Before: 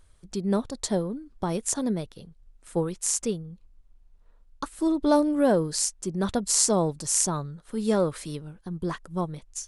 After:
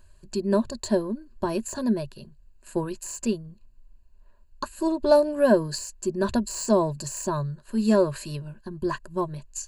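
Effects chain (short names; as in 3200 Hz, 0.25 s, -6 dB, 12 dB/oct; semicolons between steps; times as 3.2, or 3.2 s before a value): de-esser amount 60%; ripple EQ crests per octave 1.4, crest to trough 14 dB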